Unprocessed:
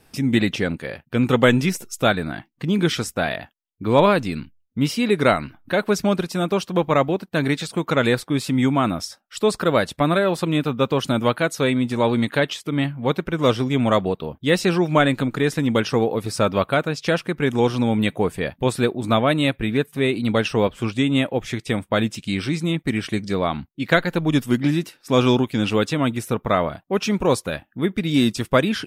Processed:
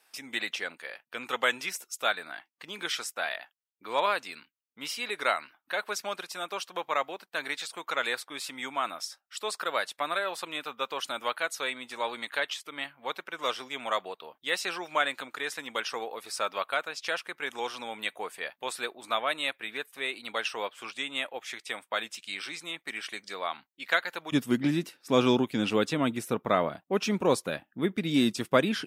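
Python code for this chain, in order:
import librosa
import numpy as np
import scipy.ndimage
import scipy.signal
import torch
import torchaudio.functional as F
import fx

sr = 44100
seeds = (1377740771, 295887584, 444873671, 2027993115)

y = fx.highpass(x, sr, hz=fx.steps((0.0, 880.0), (24.32, 180.0)), slope=12)
y = y * librosa.db_to_amplitude(-5.5)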